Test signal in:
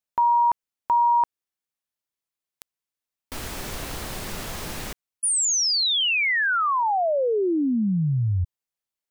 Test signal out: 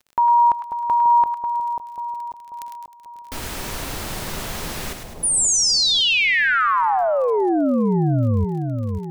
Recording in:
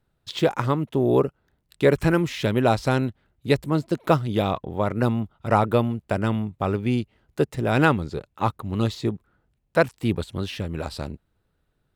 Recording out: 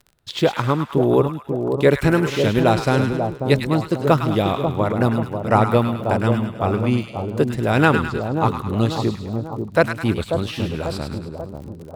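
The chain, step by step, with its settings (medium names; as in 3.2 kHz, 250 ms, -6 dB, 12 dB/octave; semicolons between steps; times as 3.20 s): two-band feedback delay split 980 Hz, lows 540 ms, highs 104 ms, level -6 dB; crackle 34 per s -38 dBFS; trim +3 dB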